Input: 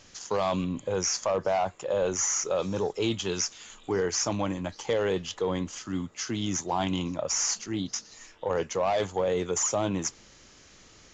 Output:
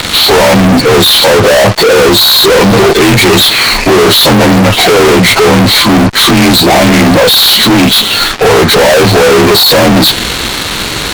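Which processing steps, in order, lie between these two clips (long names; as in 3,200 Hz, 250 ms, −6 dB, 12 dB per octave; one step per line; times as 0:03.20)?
partials spread apart or drawn together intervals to 86%
fuzz pedal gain 54 dB, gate −57 dBFS
boost into a limiter +14 dB
level −2 dB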